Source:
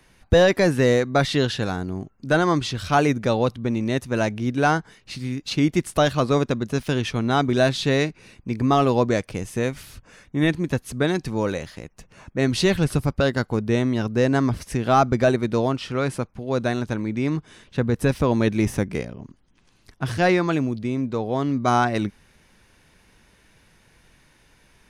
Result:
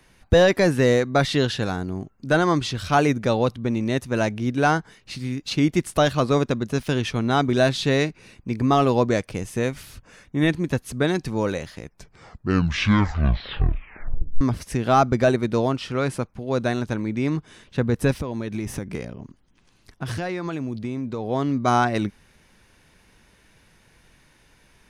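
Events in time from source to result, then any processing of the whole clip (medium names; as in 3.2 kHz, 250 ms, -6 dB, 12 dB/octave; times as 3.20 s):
11.74 s: tape stop 2.67 s
18.16–21.26 s: compression 12:1, threshold -23 dBFS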